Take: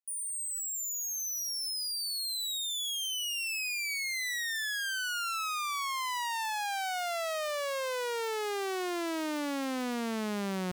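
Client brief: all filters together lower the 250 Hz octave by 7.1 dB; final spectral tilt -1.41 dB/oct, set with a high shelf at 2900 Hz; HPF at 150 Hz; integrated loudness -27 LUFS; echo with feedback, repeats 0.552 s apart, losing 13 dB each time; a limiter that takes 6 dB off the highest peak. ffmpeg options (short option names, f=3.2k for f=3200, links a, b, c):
-af "highpass=150,equalizer=f=250:t=o:g=-8.5,highshelf=f=2.9k:g=-7.5,alimiter=level_in=8.5dB:limit=-24dB:level=0:latency=1,volume=-8.5dB,aecho=1:1:552|1104|1656:0.224|0.0493|0.0108,volume=10dB"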